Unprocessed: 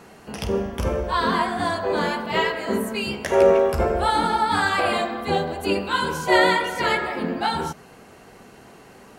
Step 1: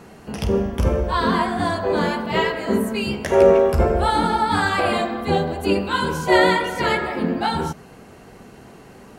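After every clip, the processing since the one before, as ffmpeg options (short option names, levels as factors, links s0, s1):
-af "lowshelf=f=360:g=7"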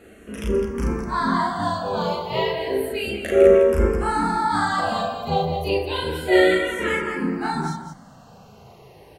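-filter_complex "[0:a]asplit=2[s0][s1];[s1]aecho=0:1:37.9|207:0.794|0.447[s2];[s0][s2]amix=inputs=2:normalize=0,asplit=2[s3][s4];[s4]afreqshift=-0.31[s5];[s3][s5]amix=inputs=2:normalize=1,volume=0.75"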